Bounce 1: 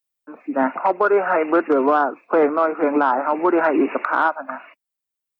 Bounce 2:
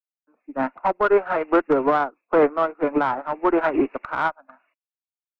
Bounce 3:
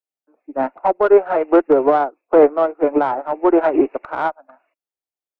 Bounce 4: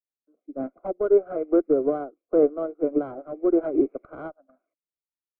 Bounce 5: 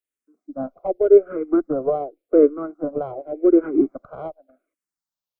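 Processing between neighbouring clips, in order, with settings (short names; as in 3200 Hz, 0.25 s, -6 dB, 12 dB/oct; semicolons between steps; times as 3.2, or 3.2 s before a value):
one diode to ground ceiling -9 dBFS; upward expander 2.5:1, over -32 dBFS; gain +2 dB
band shelf 510 Hz +8.5 dB; gain -2 dB
running mean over 49 samples; gain -3.5 dB
endless phaser -0.88 Hz; gain +6.5 dB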